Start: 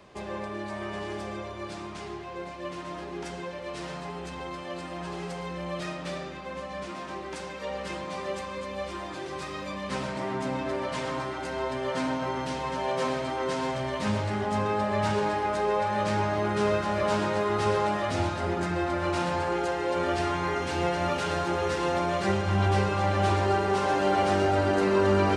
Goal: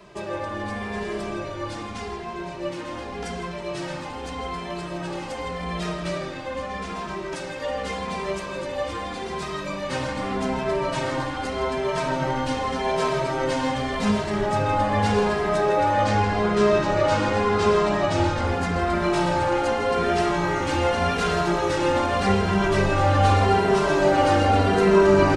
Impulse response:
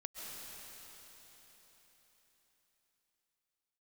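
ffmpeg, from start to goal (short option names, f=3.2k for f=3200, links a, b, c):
-filter_complex "[0:a]asettb=1/sr,asplit=3[a][b][c];[a]atrim=end=15.934[d];[b]atrim=start=15.93:end=18.47,asetpts=PTS-STARTPTS,afade=t=in:d=0.004:c=qsin,afade=t=out:st=2.536:d=0.004:c=qsin,lowpass=f=8.6k:w=0.5412,lowpass=f=8.6k:w=1.3066[e];[c]atrim=start=18.466[f];[d][e]acrossfade=d=0.004:c1=hsin:c2=qsin[g];[g][f]acrossfade=d=0.004:c1=qsin:c2=hsin,asplit=9[h][i][j][k][l][m][n][o][p];[i]adelay=162,afreqshift=-120,volume=-12dB[q];[j]adelay=324,afreqshift=-240,volume=-15.7dB[r];[k]adelay=486,afreqshift=-360,volume=-19.5dB[s];[l]adelay=648,afreqshift=-480,volume=-23.2dB[t];[m]adelay=810,afreqshift=-600,volume=-27dB[u];[n]adelay=972,afreqshift=-720,volume=-30.7dB[v];[o]adelay=1134,afreqshift=-840,volume=-34.5dB[w];[p]adelay=1296,afreqshift=-960,volume=-38.2dB[x];[h][q][r][s][t][u][v][w][x]amix=inputs=9:normalize=0,asplit=2[y][z];[z]adelay=2.6,afreqshift=-0.84[aa];[y][aa]amix=inputs=2:normalize=1,volume=8dB"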